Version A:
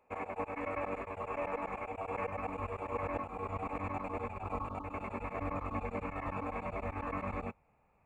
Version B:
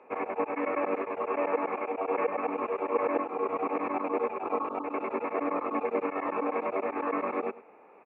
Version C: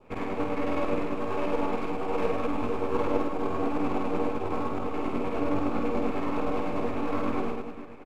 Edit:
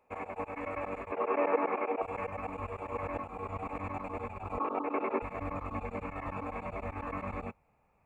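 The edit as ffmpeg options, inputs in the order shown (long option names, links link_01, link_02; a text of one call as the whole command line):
ffmpeg -i take0.wav -i take1.wav -filter_complex "[1:a]asplit=2[link_01][link_02];[0:a]asplit=3[link_03][link_04][link_05];[link_03]atrim=end=1.122[link_06];[link_01]atrim=start=1.118:end=2.022[link_07];[link_04]atrim=start=2.018:end=4.582[link_08];[link_02]atrim=start=4.578:end=5.222[link_09];[link_05]atrim=start=5.218[link_10];[link_06][link_07]acrossfade=duration=0.004:curve1=hsin:curve2=hsin[link_11];[link_11][link_08]acrossfade=duration=0.004:curve1=hsin:curve2=hsin[link_12];[link_12][link_09]acrossfade=duration=0.004:curve1=hsin:curve2=hsin[link_13];[link_13][link_10]acrossfade=duration=0.004:curve1=hsin:curve2=hsin" out.wav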